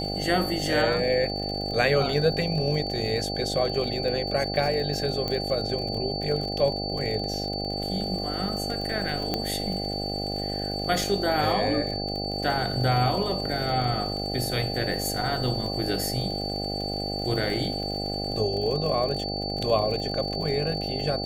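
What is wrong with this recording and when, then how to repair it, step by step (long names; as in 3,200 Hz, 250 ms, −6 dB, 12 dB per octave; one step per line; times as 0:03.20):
mains buzz 50 Hz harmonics 16 −32 dBFS
surface crackle 44 per second −32 dBFS
whistle 4,500 Hz −32 dBFS
0:05.28: click −15 dBFS
0:09.34: click −11 dBFS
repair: click removal
notch filter 4,500 Hz, Q 30
hum removal 50 Hz, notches 16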